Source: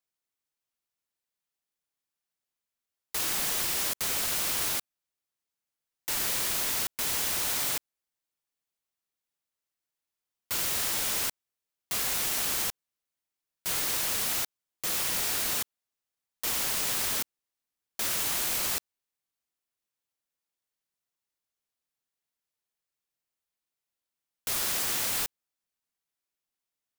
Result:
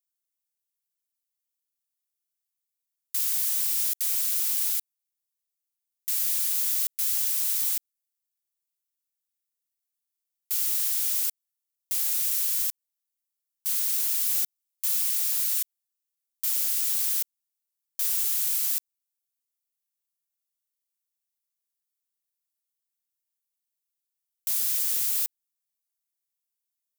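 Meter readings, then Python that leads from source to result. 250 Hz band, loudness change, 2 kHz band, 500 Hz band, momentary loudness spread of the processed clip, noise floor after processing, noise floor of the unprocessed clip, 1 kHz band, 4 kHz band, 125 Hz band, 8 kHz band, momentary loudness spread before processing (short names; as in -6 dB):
under -25 dB, +3.5 dB, -10.0 dB, under -20 dB, 7 LU, -85 dBFS, under -85 dBFS, under -15 dB, -4.0 dB, under -30 dB, +1.5 dB, 7 LU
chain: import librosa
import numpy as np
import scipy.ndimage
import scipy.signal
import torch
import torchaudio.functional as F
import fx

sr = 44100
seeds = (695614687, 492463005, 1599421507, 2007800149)

p1 = np.diff(x, prepend=0.0)
p2 = fx.rider(p1, sr, range_db=3, speed_s=0.5)
p3 = p1 + (p2 * 10.0 ** (2.0 / 20.0))
y = p3 * 10.0 ** (-6.0 / 20.0)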